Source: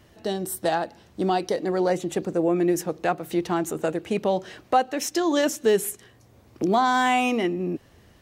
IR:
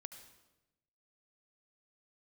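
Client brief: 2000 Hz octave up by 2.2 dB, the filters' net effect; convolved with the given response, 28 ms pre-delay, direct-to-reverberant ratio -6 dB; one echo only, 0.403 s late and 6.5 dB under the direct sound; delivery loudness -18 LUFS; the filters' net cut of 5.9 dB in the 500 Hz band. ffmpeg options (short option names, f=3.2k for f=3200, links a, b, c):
-filter_complex "[0:a]equalizer=f=500:t=o:g=-8.5,equalizer=f=2k:t=o:g=3.5,aecho=1:1:403:0.473,asplit=2[a][b];[1:a]atrim=start_sample=2205,adelay=28[c];[b][c]afir=irnorm=-1:irlink=0,volume=11dB[d];[a][d]amix=inputs=2:normalize=0,volume=2dB"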